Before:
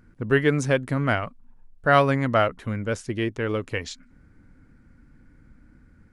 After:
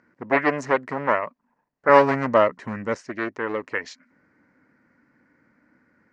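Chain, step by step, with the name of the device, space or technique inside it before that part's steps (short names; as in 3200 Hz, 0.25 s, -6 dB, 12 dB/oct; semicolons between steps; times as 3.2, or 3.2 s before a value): full-range speaker at full volume (Doppler distortion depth 0.61 ms; speaker cabinet 270–6300 Hz, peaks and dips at 600 Hz +6 dB, 1000 Hz +7 dB, 1900 Hz +8 dB, 3500 Hz -9 dB); 1.89–2.95 tone controls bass +9 dB, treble +8 dB; gain -1.5 dB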